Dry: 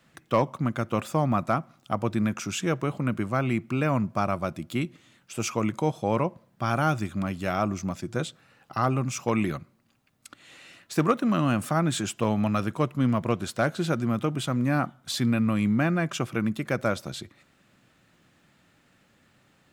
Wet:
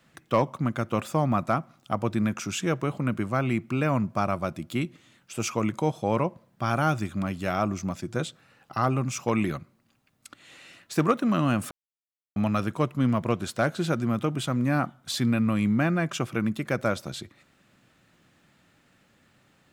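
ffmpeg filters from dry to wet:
ffmpeg -i in.wav -filter_complex "[0:a]asplit=3[link_01][link_02][link_03];[link_01]atrim=end=11.71,asetpts=PTS-STARTPTS,afade=type=out:start_time=11.706:duration=0.004:curve=hsin[link_04];[link_02]atrim=start=11.71:end=12.36,asetpts=PTS-STARTPTS,volume=0[link_05];[link_03]atrim=start=12.36,asetpts=PTS-STARTPTS,afade=type=in:duration=0.004:curve=hsin[link_06];[link_04][link_05][link_06]concat=n=3:v=0:a=1" out.wav

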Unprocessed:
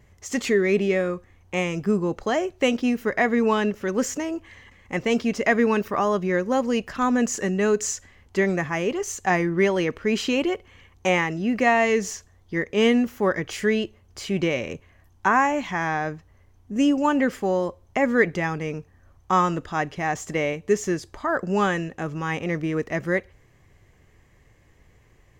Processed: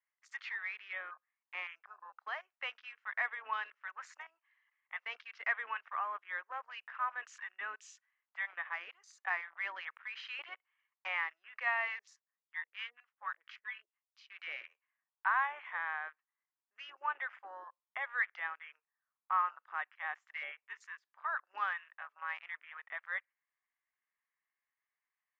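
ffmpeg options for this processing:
ffmpeg -i in.wav -filter_complex "[0:a]asettb=1/sr,asplit=3[link_01][link_02][link_03];[link_01]atrim=end=11.994[link_04];[link_02]atrim=start=11.99:end=14.3,asetpts=PTS-STARTPTS,afade=type=in:duration=0.004:curve=qsin,afade=type=out:start_time=2.306:duration=0.004:curve=qsin,acrossover=split=640[link_05][link_06];[link_05]aeval=exprs='val(0)*(1-1/2+1/2*cos(2*PI*4.3*n/s))':channel_layout=same[link_07];[link_06]aeval=exprs='val(0)*(1-1/2-1/2*cos(2*PI*4.3*n/s))':channel_layout=same[link_08];[link_07][link_08]amix=inputs=2:normalize=0[link_09];[link_03]atrim=start=14.296[link_10];[link_04][link_09]acrossfade=duration=0.004:curve1=hsin:curve2=qsin[link_11];[link_11][link_10]acrossfade=duration=0.004:curve1=qsin:curve2=hsin,highpass=frequency=1100:width=0.5412,highpass=frequency=1100:width=1.3066,afwtdn=0.01,lowpass=2000,volume=-7dB" out.wav

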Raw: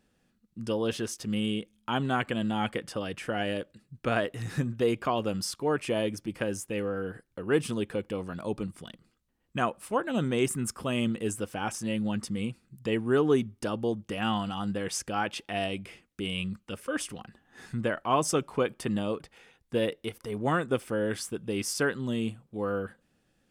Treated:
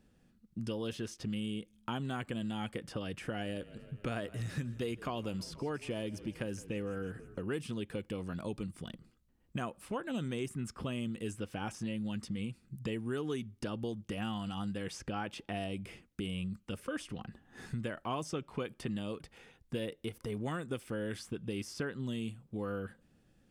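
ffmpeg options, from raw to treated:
ffmpeg -i in.wav -filter_complex "[0:a]asettb=1/sr,asplit=3[link_01][link_02][link_03];[link_01]atrim=end=3.254[link_04];[link_02]atrim=start=3.25:end=7.41,asetpts=PTS-STARTPTS,afade=type=in:duration=0.004:curve=qsin,afade=type=out:start_time=4.156:duration=0.004:curve=qsin,asplit=6[link_05][link_06][link_07][link_08][link_09][link_10];[link_06]adelay=160,afreqshift=-30,volume=-22dB[link_11];[link_07]adelay=320,afreqshift=-60,volume=-26.4dB[link_12];[link_08]adelay=480,afreqshift=-90,volume=-30.9dB[link_13];[link_09]adelay=640,afreqshift=-120,volume=-35.3dB[link_14];[link_10]adelay=800,afreqshift=-150,volume=-39.7dB[link_15];[link_05][link_11][link_12][link_13][link_14][link_15]amix=inputs=6:normalize=0,atrim=end_sample=183456[link_16];[link_03]atrim=start=7.406[link_17];[link_04][link_16]acrossfade=duration=0.004:curve1=hsin:curve2=qsin[link_18];[link_18][link_17]acrossfade=duration=0.004:curve1=qsin:curve2=hsin,lowshelf=frequency=340:gain=9,acrossover=split=1700|5000[link_19][link_20][link_21];[link_19]acompressor=threshold=-34dB:ratio=4[link_22];[link_20]acompressor=threshold=-45dB:ratio=4[link_23];[link_21]acompressor=threshold=-54dB:ratio=4[link_24];[link_22][link_23][link_24]amix=inputs=3:normalize=0,volume=-2.5dB" out.wav

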